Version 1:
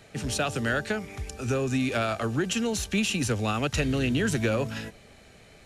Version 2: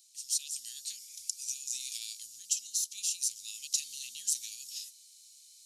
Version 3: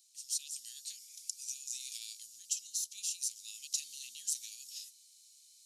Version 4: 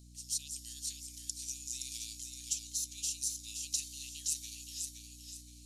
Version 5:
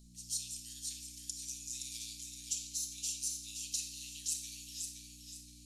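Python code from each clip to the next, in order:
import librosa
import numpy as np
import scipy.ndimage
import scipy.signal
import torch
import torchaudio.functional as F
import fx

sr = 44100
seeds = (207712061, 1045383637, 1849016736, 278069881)

y1 = scipy.signal.sosfilt(scipy.signal.cheby2(4, 60, 1500.0, 'highpass', fs=sr, output='sos'), x)
y1 = fx.rider(y1, sr, range_db=3, speed_s=0.5)
y1 = y1 * librosa.db_to_amplitude(6.0)
y2 = fx.low_shelf(y1, sr, hz=130.0, db=-6.5)
y2 = y2 * librosa.db_to_amplitude(-4.5)
y3 = fx.add_hum(y2, sr, base_hz=60, snr_db=13)
y3 = fx.echo_feedback(y3, sr, ms=520, feedback_pct=32, wet_db=-5.5)
y4 = fx.room_shoebox(y3, sr, seeds[0], volume_m3=1100.0, walls='mixed', distance_m=1.4)
y4 = y4 * librosa.db_to_amplitude(-3.0)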